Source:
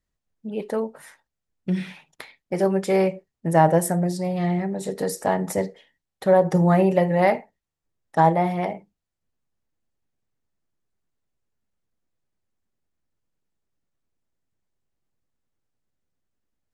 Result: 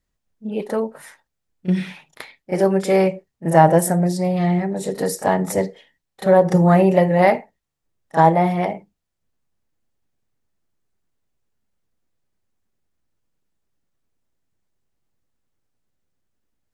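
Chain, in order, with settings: pre-echo 33 ms -14 dB; gain +4 dB

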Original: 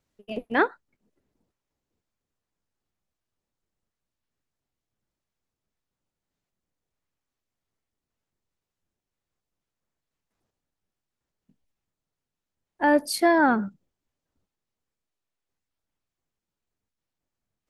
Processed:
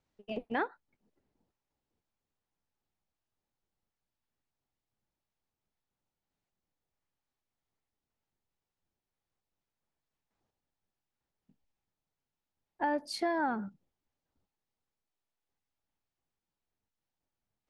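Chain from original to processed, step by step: LPF 6100 Hz 12 dB/oct; bell 830 Hz +5.5 dB 0.33 oct; compressor 2.5:1, threshold -29 dBFS, peak gain reduction 10.5 dB; gain -4 dB

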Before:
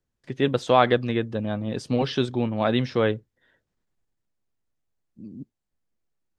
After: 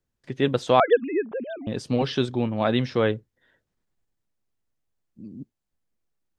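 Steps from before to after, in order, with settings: 0.8–1.67 sine-wave speech

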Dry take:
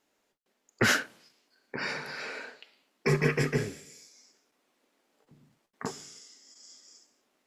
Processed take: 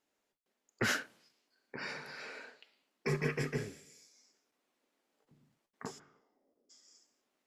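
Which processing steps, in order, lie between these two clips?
5.98–6.69 synth low-pass 1500 Hz -> 400 Hz, resonance Q 2.6; gain -8 dB

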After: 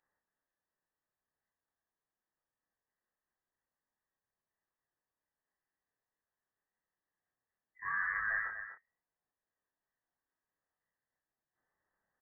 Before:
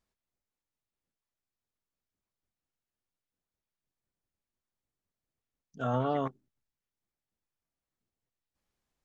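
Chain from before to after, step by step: HPF 420 Hz 12 dB/oct; bell 1000 Hz -12.5 dB 0.24 oct; in parallel at +2.5 dB: compressor, threshold -49 dBFS, peak gain reduction 18.5 dB; on the sum: chorus 1.4 Hz, delay 16.5 ms, depth 5.5 ms; doubler 23 ms -5.5 dB; on a send: echo 0.182 s -9.5 dB; on the sum: inverted band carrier 2900 Hz; speed mistake 45 rpm record played at 33 rpm; gain -1 dB

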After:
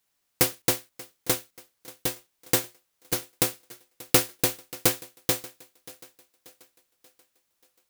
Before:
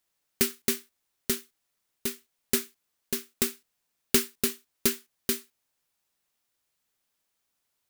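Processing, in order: cycle switcher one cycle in 2, inverted; thinning echo 0.584 s, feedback 48%, high-pass 150 Hz, level -20.5 dB; gain +3 dB

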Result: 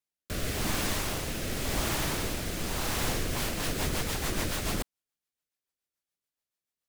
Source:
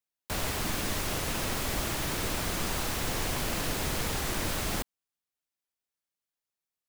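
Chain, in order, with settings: rotary speaker horn 0.9 Hz, later 7 Hz, at 2.96; gain +2.5 dB

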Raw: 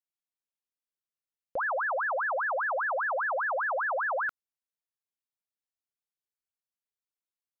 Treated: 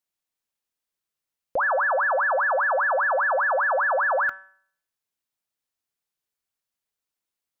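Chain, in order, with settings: de-hum 190.8 Hz, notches 19; gain +7.5 dB

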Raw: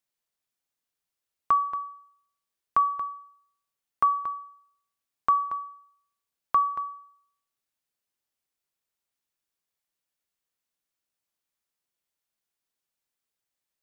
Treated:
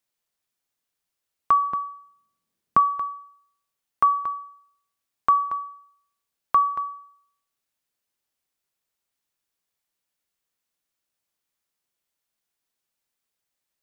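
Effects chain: 1.63–2.8 bell 190 Hz +14.5 dB 1.9 oct; gain +3.5 dB

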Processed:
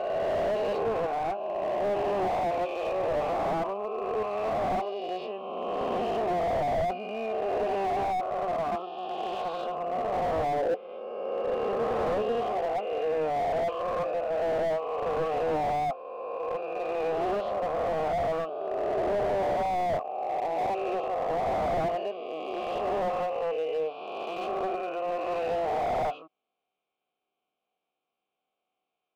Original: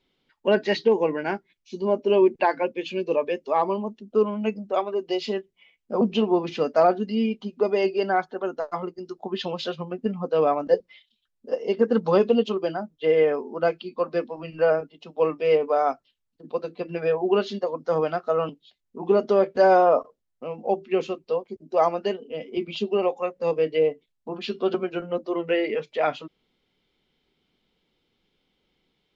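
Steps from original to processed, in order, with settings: spectral swells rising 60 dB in 2.57 s; sample leveller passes 1; requantised 12-bit, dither none; vowel filter a; high shelf 5400 Hz -11.5 dB; slew limiter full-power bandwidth 30 Hz; gain +1 dB

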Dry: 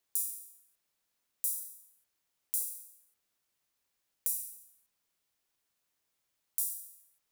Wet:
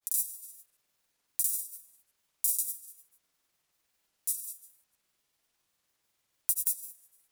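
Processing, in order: grains, spray 0.1 s, pitch spread up and down by 0 st; gain +6.5 dB

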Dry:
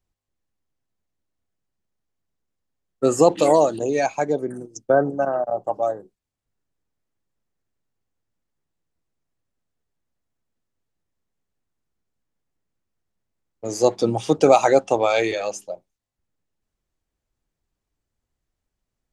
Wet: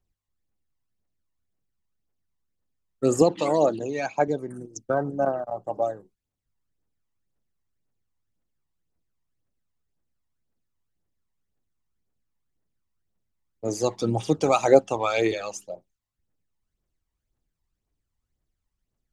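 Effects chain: phaser 1.9 Hz, delay 1.1 ms, feedback 54%; 3.22–4.28 BPF 120–5400 Hz; gain -5 dB

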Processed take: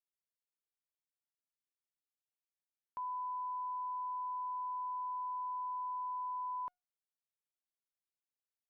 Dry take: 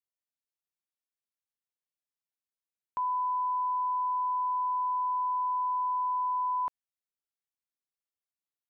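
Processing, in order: resonator 720 Hz, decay 0.28 s, mix 40%; gain -5.5 dB

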